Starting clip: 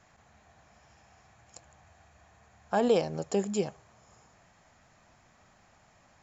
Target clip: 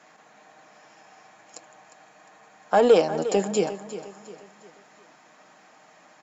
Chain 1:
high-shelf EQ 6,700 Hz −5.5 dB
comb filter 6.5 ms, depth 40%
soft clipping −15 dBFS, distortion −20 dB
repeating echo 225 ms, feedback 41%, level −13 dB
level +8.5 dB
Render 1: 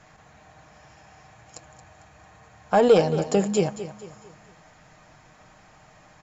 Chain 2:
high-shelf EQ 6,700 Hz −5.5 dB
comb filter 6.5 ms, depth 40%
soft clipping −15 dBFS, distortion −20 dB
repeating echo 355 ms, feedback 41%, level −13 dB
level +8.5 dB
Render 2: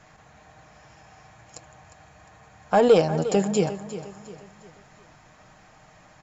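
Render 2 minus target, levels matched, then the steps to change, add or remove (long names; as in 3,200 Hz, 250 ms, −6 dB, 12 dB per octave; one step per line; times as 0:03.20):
250 Hz band +3.5 dB
add first: high-pass filter 220 Hz 24 dB per octave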